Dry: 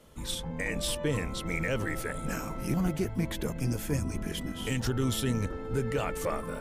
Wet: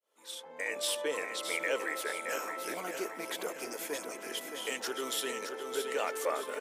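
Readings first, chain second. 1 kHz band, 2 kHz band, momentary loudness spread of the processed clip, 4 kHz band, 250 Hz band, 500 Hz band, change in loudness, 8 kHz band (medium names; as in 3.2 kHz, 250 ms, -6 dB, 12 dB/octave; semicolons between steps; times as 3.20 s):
+0.5 dB, +0.5 dB, 6 LU, 0.0 dB, -13.5 dB, -1.0 dB, -3.5 dB, +0.5 dB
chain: fade-in on the opening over 0.79 s; high-pass 410 Hz 24 dB/octave; on a send: feedback delay 619 ms, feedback 45%, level -7 dB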